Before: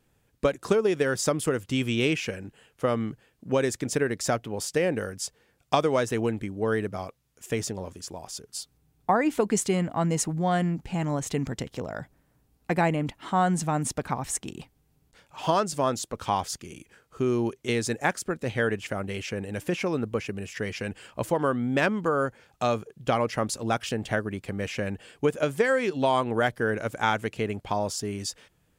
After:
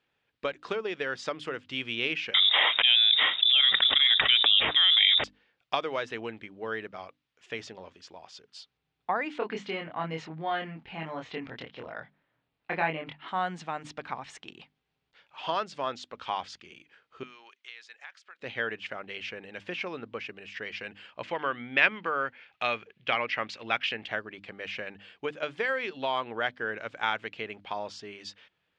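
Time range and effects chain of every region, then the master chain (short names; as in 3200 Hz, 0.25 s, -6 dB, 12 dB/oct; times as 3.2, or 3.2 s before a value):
2.34–5.24 inverted band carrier 3700 Hz + fast leveller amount 100%
9.38–13.28 LPF 3600 Hz + doubler 25 ms -2.5 dB
17.23–18.4 HPF 1300 Hz + compressor 3:1, threshold -43 dBFS
21.23–24.06 LPF 7300 Hz + bell 2300 Hz +10 dB 1 oct
whole clip: LPF 3500 Hz 24 dB/oct; tilt +4 dB/oct; notches 50/100/150/200/250/300 Hz; gain -5 dB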